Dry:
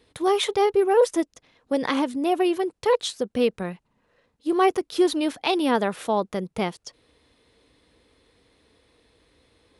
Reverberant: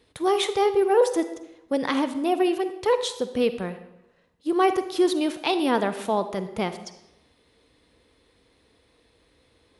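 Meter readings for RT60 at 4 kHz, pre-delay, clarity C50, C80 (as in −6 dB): 0.70 s, 39 ms, 11.5 dB, 13.5 dB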